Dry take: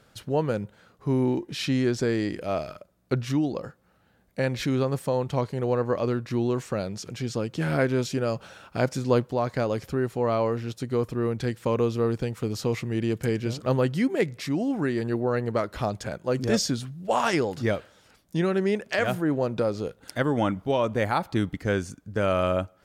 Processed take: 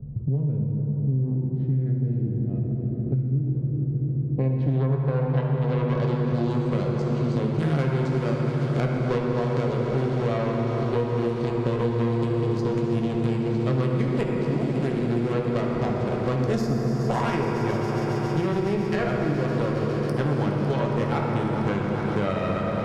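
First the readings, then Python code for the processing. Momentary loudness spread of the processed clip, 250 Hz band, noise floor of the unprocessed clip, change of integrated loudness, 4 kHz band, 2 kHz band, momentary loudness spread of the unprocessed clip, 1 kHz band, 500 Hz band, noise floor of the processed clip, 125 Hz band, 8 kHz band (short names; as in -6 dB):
2 LU, +2.0 dB, -62 dBFS, +2.0 dB, -5.0 dB, -2.0 dB, 7 LU, 0.0 dB, -0.5 dB, -28 dBFS, +7.0 dB, under -10 dB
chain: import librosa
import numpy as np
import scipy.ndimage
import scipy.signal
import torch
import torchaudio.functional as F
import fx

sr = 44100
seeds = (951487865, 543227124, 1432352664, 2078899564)

p1 = fx.wiener(x, sr, points=25)
p2 = fx.spec_box(p1, sr, start_s=1.24, length_s=0.67, low_hz=570.0, high_hz=2100.0, gain_db=10)
p3 = fx.high_shelf(p2, sr, hz=12000.0, db=-5.5)
p4 = fx.rider(p3, sr, range_db=10, speed_s=2.0)
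p5 = p3 + (p4 * 10.0 ** (2.0 / 20.0))
p6 = fx.filter_sweep_lowpass(p5, sr, from_hz=120.0, to_hz=9800.0, start_s=3.83, end_s=6.4, q=0.86)
p7 = fx.tube_stage(p6, sr, drive_db=11.0, bias=0.8)
p8 = p7 + fx.echo_swell(p7, sr, ms=138, loudest=5, wet_db=-17.0, dry=0)
p9 = fx.rev_fdn(p8, sr, rt60_s=3.7, lf_ratio=1.0, hf_ratio=0.4, size_ms=42.0, drr_db=-2.0)
p10 = fx.band_squash(p9, sr, depth_pct=100)
y = p10 * 10.0 ** (-7.5 / 20.0)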